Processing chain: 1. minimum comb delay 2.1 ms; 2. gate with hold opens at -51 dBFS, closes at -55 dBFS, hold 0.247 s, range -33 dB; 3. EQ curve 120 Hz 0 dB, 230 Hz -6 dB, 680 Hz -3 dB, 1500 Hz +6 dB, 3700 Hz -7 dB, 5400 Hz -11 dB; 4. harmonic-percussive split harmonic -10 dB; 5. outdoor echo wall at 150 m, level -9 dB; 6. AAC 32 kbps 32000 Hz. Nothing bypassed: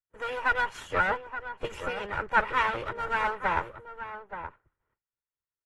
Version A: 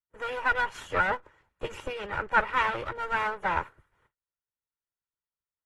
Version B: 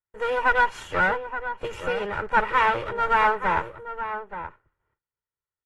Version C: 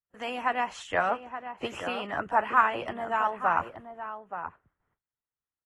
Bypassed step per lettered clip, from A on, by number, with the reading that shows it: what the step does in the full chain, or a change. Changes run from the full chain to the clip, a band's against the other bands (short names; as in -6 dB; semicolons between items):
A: 5, momentary loudness spread change -2 LU; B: 4, 500 Hz band +2.5 dB; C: 1, 125 Hz band -6.5 dB